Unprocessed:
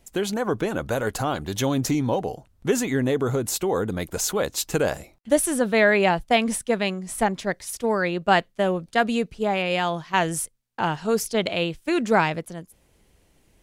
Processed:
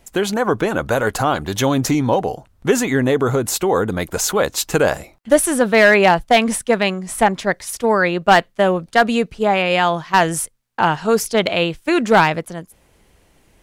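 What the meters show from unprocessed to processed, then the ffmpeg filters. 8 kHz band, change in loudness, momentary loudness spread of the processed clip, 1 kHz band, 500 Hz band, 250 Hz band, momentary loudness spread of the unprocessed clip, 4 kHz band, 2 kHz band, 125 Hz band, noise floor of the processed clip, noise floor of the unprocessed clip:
+5.5 dB, +6.5 dB, 7 LU, +8.0 dB, +6.5 dB, +5.5 dB, 7 LU, +6.5 dB, +7.5 dB, +5.0 dB, -56 dBFS, -62 dBFS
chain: -af "equalizer=f=1.2k:w=0.62:g=4.5,volume=9.5dB,asoftclip=hard,volume=-9.5dB,volume=5dB"

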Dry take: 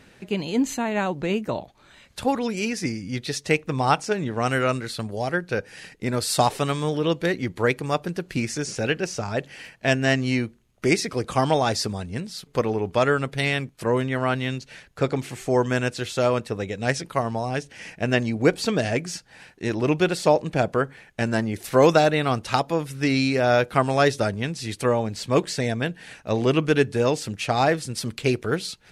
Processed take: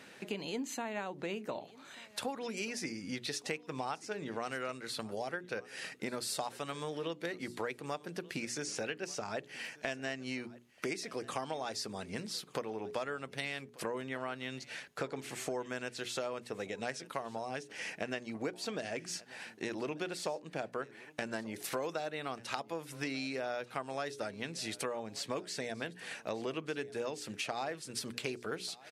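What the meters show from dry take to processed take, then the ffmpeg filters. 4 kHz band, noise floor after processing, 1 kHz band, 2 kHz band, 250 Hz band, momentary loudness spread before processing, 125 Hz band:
-11.0 dB, -57 dBFS, -15.5 dB, -13.5 dB, -17.0 dB, 9 LU, -22.5 dB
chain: -filter_complex "[0:a]highpass=150,lowshelf=f=220:g=-8,bandreject=f=60:t=h:w=6,bandreject=f=120:t=h:w=6,bandreject=f=180:t=h:w=6,bandreject=f=240:t=h:w=6,bandreject=f=300:t=h:w=6,bandreject=f=360:t=h:w=6,bandreject=f=420:t=h:w=6,acompressor=threshold=-36dB:ratio=6,asplit=2[a][b];[b]aecho=0:1:1188:0.0891[c];[a][c]amix=inputs=2:normalize=0"

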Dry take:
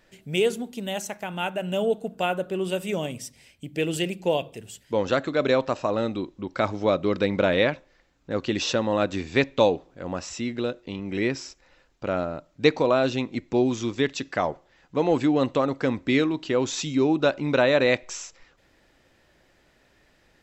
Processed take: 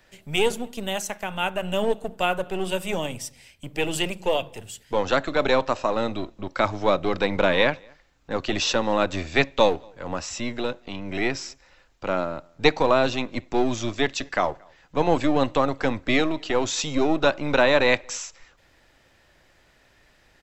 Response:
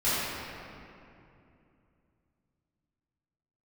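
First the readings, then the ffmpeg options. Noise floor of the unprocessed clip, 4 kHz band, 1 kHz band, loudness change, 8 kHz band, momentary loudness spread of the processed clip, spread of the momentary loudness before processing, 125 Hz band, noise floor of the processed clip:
-62 dBFS, +3.5 dB, +4.0 dB, +1.0 dB, +3.5 dB, 12 LU, 12 LU, -1.5 dB, -60 dBFS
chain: -filter_complex "[0:a]acrossover=split=130|600|3500[a][b][c][d];[b]aeval=exprs='max(val(0),0)':c=same[e];[a][e][c][d]amix=inputs=4:normalize=0,asplit=2[f][g];[g]adelay=227.4,volume=-30dB,highshelf=f=4k:g=-5.12[h];[f][h]amix=inputs=2:normalize=0,volume=3.5dB"

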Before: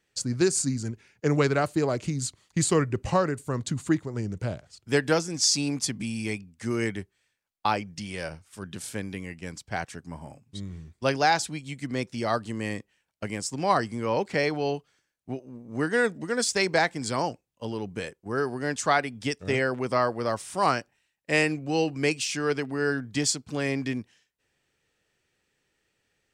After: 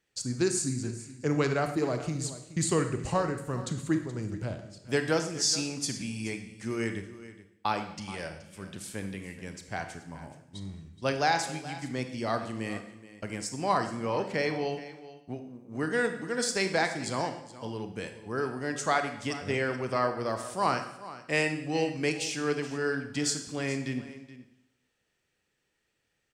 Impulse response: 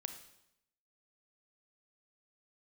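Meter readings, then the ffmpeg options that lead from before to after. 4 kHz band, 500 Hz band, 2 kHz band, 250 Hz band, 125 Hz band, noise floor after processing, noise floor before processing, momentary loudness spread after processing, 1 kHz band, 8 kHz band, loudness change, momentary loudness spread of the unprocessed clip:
-3.5 dB, -3.5 dB, -3.5 dB, -3.5 dB, -3.5 dB, -78 dBFS, -77 dBFS, 15 LU, -3.5 dB, -3.5 dB, -3.5 dB, 14 LU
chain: -filter_complex "[0:a]aecho=1:1:425:0.158[a];[1:a]atrim=start_sample=2205[b];[a][b]afir=irnorm=-1:irlink=0,volume=-1.5dB"

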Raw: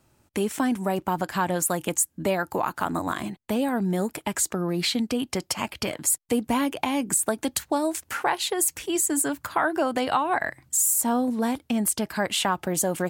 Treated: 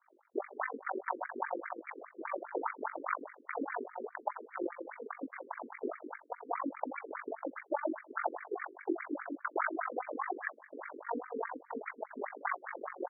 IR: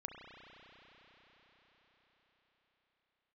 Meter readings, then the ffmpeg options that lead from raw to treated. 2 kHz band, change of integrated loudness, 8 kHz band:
-9.0 dB, -14.5 dB, under -40 dB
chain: -filter_complex "[0:a]flanger=delay=17:depth=5.6:speed=0.65,highshelf=f=7.8k:g=8.5,aeval=exprs='max(val(0),0)':c=same,tremolo=f=47:d=0.919,acompressor=threshold=-38dB:ratio=6,asplit=2[a][b];[b]aecho=0:1:85|170|255|340:0.158|0.0792|0.0396|0.0198[c];[a][c]amix=inputs=2:normalize=0,adynamicequalizer=threshold=0.00141:dfrequency=340:dqfactor=0.84:tfrequency=340:tqfactor=0.84:attack=5:release=100:ratio=0.375:range=2.5:mode=cutabove:tftype=bell,afftfilt=real='re*between(b*sr/1024,330*pow(1700/330,0.5+0.5*sin(2*PI*4.9*pts/sr))/1.41,330*pow(1700/330,0.5+0.5*sin(2*PI*4.9*pts/sr))*1.41)':imag='im*between(b*sr/1024,330*pow(1700/330,0.5+0.5*sin(2*PI*4.9*pts/sr))/1.41,330*pow(1700/330,0.5+0.5*sin(2*PI*4.9*pts/sr))*1.41)':win_size=1024:overlap=0.75,volume=15.5dB"

